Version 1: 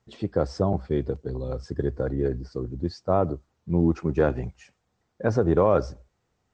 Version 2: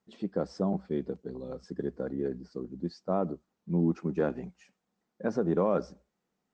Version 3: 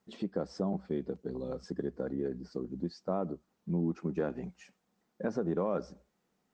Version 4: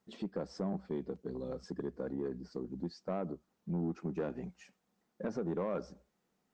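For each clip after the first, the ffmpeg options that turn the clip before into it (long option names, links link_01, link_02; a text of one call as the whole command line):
ffmpeg -i in.wav -af "lowshelf=frequency=140:width_type=q:width=3:gain=-10,volume=-8dB" out.wav
ffmpeg -i in.wav -af "acompressor=threshold=-39dB:ratio=2,volume=4dB" out.wav
ffmpeg -i in.wav -af "asoftclip=type=tanh:threshold=-25dB,volume=-2dB" out.wav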